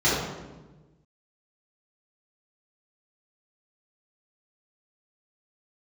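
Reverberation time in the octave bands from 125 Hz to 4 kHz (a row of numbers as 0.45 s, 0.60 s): 1.7 s, 1.5 s, 1.4 s, 1.1 s, 0.90 s, 0.75 s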